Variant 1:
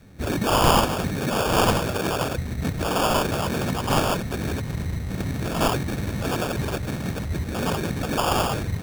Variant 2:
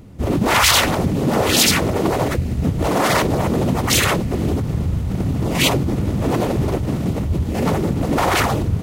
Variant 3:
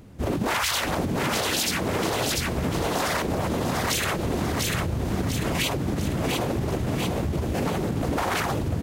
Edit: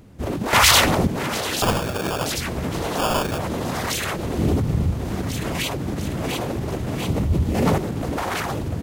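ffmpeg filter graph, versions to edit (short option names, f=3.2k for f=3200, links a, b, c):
-filter_complex "[1:a]asplit=3[a][b][c];[0:a]asplit=2[d][e];[2:a]asplit=6[f][g][h][i][j][k];[f]atrim=end=0.532[l];[a]atrim=start=0.528:end=1.072[m];[g]atrim=start=1.068:end=1.622[n];[d]atrim=start=1.618:end=2.262[o];[h]atrim=start=2.258:end=2.982[p];[e]atrim=start=2.978:end=3.382[q];[i]atrim=start=3.378:end=4.382[r];[b]atrim=start=4.378:end=4.922[s];[j]atrim=start=4.918:end=7.092[t];[c]atrim=start=7.088:end=7.782[u];[k]atrim=start=7.778[v];[l][m]acrossfade=d=0.004:c1=hsin:c2=hsin[w];[w][n]acrossfade=d=0.004:c1=hsin:c2=hsin[x];[x][o]acrossfade=d=0.004:c1=hsin:c2=hsin[y];[y][p]acrossfade=d=0.004:c1=hsin:c2=hsin[z];[z][q]acrossfade=d=0.004:c1=hsin:c2=hsin[aa];[aa][r]acrossfade=d=0.004:c1=hsin:c2=hsin[ab];[ab][s]acrossfade=d=0.004:c1=hsin:c2=hsin[ac];[ac][t]acrossfade=d=0.004:c1=hsin:c2=hsin[ad];[ad][u]acrossfade=d=0.004:c1=hsin:c2=hsin[ae];[ae][v]acrossfade=d=0.004:c1=hsin:c2=hsin"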